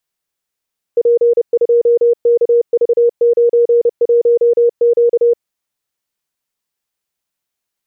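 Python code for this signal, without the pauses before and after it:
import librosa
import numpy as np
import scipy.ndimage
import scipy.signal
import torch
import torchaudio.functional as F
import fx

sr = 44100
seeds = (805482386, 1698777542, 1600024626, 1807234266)

y = fx.morse(sr, text='P2KV91Q', wpm=30, hz=473.0, level_db=-7.0)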